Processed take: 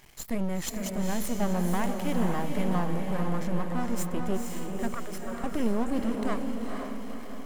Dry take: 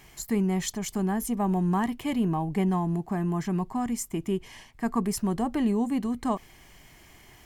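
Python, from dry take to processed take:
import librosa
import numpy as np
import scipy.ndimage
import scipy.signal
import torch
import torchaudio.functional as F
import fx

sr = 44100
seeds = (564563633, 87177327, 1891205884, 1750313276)

y = np.maximum(x, 0.0)
y = fx.cheby_ripple_highpass(y, sr, hz=380.0, ripple_db=9, at=(4.94, 5.44))
y = fx.echo_diffused(y, sr, ms=480, feedback_pct=52, wet_db=-3.5)
y = y * librosa.db_to_amplitude(1.5)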